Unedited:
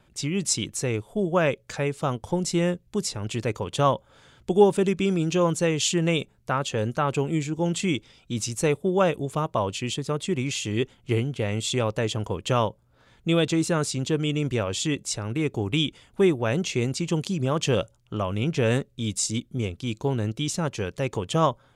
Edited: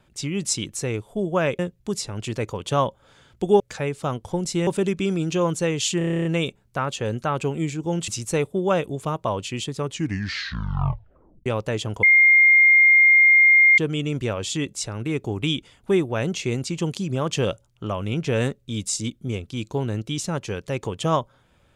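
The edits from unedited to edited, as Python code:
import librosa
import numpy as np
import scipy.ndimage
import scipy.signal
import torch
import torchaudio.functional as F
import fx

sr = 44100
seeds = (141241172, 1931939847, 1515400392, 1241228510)

y = fx.edit(x, sr, fx.move(start_s=1.59, length_s=1.07, to_s=4.67),
    fx.stutter(start_s=5.98, slice_s=0.03, count=10),
    fx.cut(start_s=7.81, length_s=0.57),
    fx.tape_stop(start_s=10.07, length_s=1.69),
    fx.bleep(start_s=12.33, length_s=1.75, hz=2120.0, db=-10.5), tone=tone)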